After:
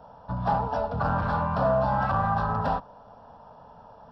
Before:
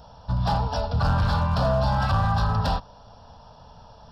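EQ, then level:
three-way crossover with the lows and the highs turned down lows −13 dB, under 170 Hz, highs −20 dB, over 2,000 Hz
+1.5 dB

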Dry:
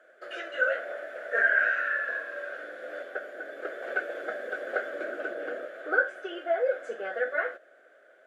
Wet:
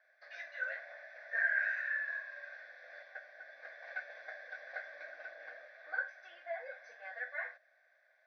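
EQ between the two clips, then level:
high-pass filter 1,100 Hz 12 dB per octave
linear-phase brick-wall low-pass 6,200 Hz
phaser with its sweep stopped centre 2,000 Hz, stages 8
−3.5 dB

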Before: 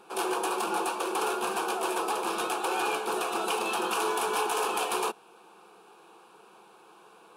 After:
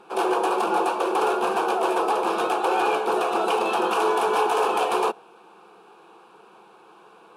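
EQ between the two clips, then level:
dynamic equaliser 590 Hz, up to +6 dB, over −44 dBFS, Q 1.1
high-shelf EQ 5,400 Hz −12 dB
+4.5 dB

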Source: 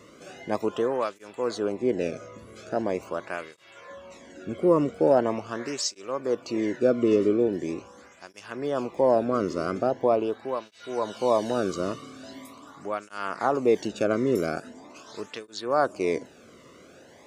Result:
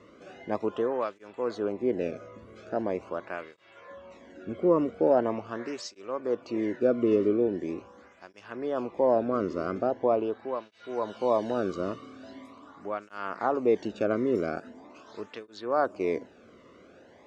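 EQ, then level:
high-frequency loss of the air 78 metres
parametric band 140 Hz −11 dB 0.21 octaves
high-shelf EQ 3,800 Hz −8.5 dB
−2.0 dB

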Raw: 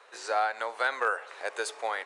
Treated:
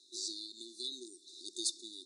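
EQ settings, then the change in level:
high-pass filter 260 Hz 12 dB per octave
linear-phase brick-wall band-stop 380–3,500 Hz
low-pass filter 9,300 Hz 12 dB per octave
+5.0 dB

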